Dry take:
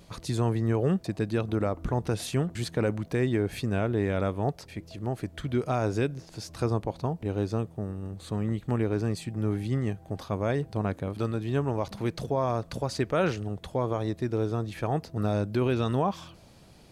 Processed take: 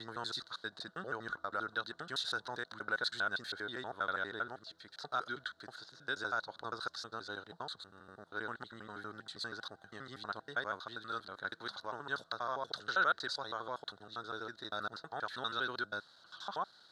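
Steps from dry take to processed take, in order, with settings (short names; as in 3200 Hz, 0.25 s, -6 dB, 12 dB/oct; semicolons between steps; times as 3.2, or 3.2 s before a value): slices in reverse order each 80 ms, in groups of 8; double band-pass 2400 Hz, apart 1.4 oct; gain +8 dB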